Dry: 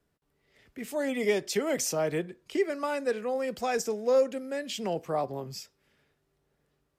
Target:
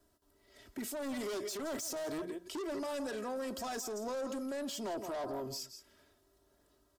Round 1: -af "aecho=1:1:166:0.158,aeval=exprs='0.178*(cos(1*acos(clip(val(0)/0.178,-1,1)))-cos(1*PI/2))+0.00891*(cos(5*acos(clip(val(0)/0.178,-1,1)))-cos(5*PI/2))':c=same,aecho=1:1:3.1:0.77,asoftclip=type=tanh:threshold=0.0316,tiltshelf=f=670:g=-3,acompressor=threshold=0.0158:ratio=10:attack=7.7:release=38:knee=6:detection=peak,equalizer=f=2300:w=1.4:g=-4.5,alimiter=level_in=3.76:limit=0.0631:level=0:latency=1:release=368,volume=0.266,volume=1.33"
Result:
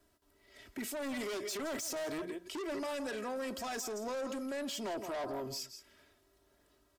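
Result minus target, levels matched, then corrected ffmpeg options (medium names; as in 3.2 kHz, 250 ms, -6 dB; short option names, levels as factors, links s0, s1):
2 kHz band +3.5 dB
-af "aecho=1:1:166:0.158,aeval=exprs='0.178*(cos(1*acos(clip(val(0)/0.178,-1,1)))-cos(1*PI/2))+0.00891*(cos(5*acos(clip(val(0)/0.178,-1,1)))-cos(5*PI/2))':c=same,aecho=1:1:3.1:0.77,asoftclip=type=tanh:threshold=0.0316,tiltshelf=f=670:g=-3,acompressor=threshold=0.0158:ratio=10:attack=7.7:release=38:knee=6:detection=peak,equalizer=f=2300:w=1.4:g=-11,alimiter=level_in=3.76:limit=0.0631:level=0:latency=1:release=368,volume=0.266,volume=1.33"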